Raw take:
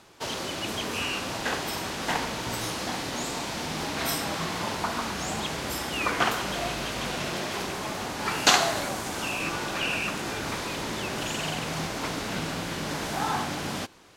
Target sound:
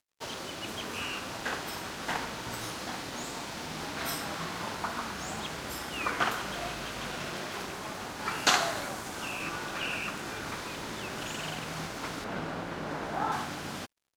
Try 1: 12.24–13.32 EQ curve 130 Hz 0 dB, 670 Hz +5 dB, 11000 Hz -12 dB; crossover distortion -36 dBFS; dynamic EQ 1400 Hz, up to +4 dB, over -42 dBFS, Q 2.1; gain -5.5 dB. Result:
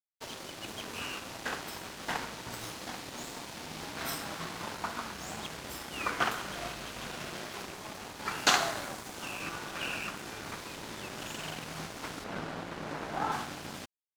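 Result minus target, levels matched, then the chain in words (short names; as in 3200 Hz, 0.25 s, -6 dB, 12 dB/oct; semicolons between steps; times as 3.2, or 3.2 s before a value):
crossover distortion: distortion +12 dB
12.24–13.32 EQ curve 130 Hz 0 dB, 670 Hz +5 dB, 11000 Hz -12 dB; crossover distortion -47.5 dBFS; dynamic EQ 1400 Hz, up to +4 dB, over -42 dBFS, Q 2.1; gain -5.5 dB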